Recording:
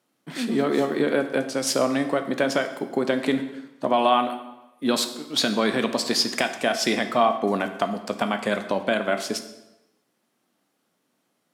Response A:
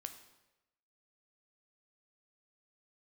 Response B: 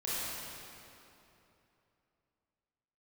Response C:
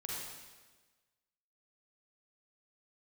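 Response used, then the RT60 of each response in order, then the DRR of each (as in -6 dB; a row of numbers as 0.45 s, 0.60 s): A; 1.0 s, 3.0 s, 1.3 s; 7.0 dB, -10.5 dB, -5.0 dB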